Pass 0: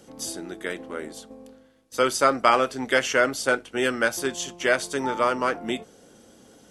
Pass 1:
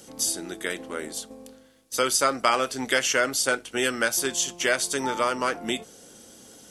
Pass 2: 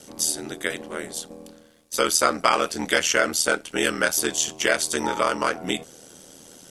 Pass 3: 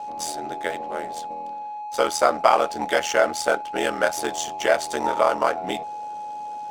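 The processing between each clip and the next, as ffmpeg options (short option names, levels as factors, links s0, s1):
-af "highshelf=f=3300:g=11.5,acompressor=threshold=0.0562:ratio=1.5"
-af "aeval=exprs='val(0)*sin(2*PI*40*n/s)':c=same,volume=1.78"
-af "aeval=exprs='val(0)+0.0141*sin(2*PI*840*n/s)':c=same,equalizer=f=730:w=1.3:g=14.5,adynamicsmooth=sensitivity=7:basefreq=2200,volume=0.531"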